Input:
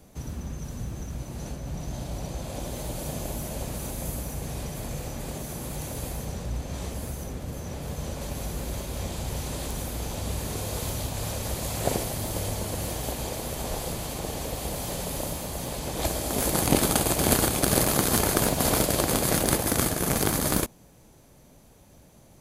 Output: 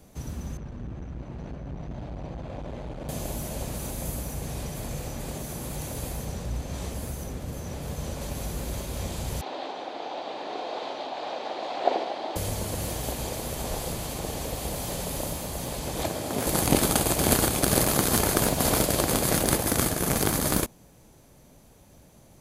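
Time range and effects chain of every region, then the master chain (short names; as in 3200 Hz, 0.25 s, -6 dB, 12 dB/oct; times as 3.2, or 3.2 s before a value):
0.57–3.09 LPF 2300 Hz + core saturation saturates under 190 Hz
9.41–12.36 Chebyshev band-pass 300–4000 Hz, order 3 + bell 750 Hz +9.5 dB 0.63 oct + notches 60/120/180/240/300/360/420/480/540 Hz
16.03–16.47 HPF 88 Hz 24 dB/oct + high shelf 4500 Hz -7 dB
whole clip: dry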